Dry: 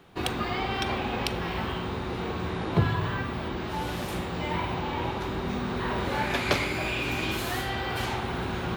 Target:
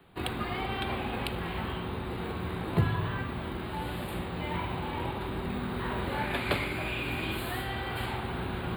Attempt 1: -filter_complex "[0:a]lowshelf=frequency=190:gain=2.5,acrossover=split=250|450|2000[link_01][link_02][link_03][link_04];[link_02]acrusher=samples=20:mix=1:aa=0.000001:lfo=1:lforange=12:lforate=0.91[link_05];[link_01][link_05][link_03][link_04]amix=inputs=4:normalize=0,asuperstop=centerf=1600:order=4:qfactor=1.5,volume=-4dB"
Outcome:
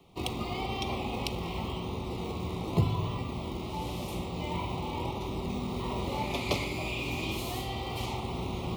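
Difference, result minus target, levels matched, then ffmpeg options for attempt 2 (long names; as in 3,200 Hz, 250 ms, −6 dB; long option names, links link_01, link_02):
8,000 Hz band +5.5 dB
-filter_complex "[0:a]lowshelf=frequency=190:gain=2.5,acrossover=split=250|450|2000[link_01][link_02][link_03][link_04];[link_02]acrusher=samples=20:mix=1:aa=0.000001:lfo=1:lforange=12:lforate=0.91[link_05];[link_01][link_05][link_03][link_04]amix=inputs=4:normalize=0,asuperstop=centerf=5900:order=4:qfactor=1.5,volume=-4dB"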